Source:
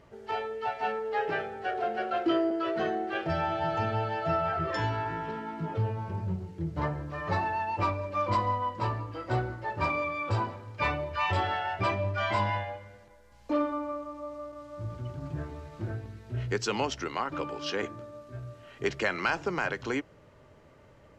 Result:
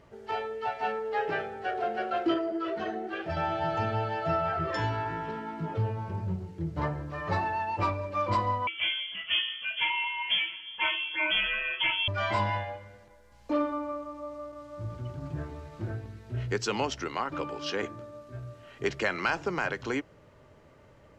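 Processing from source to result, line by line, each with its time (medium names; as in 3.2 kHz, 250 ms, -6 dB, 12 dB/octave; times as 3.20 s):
2.34–3.37 s: three-phase chorus
8.67–12.08 s: frequency inversion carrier 3.3 kHz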